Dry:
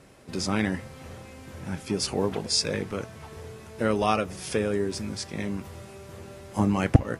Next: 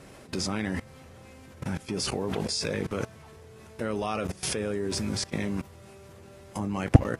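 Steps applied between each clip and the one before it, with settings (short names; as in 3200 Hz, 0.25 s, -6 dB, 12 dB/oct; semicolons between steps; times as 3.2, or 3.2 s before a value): level quantiser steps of 19 dB; gain +8 dB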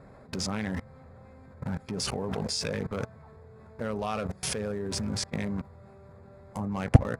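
Wiener smoothing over 15 samples; bell 330 Hz -10 dB 0.39 oct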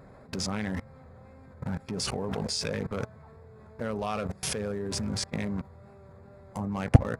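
wow and flutter 25 cents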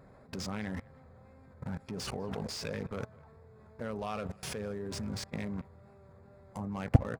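speakerphone echo 0.2 s, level -24 dB; slew limiter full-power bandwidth 130 Hz; gain -5.5 dB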